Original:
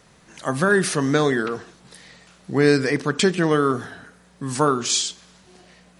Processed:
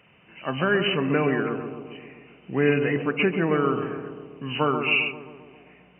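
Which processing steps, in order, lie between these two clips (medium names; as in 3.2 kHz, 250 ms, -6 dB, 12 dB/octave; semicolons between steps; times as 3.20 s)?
knee-point frequency compression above 2 kHz 4:1; high-pass 79 Hz; on a send: bucket-brigade echo 132 ms, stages 1024, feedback 64%, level -6.5 dB; on the sum: trim -4.5 dB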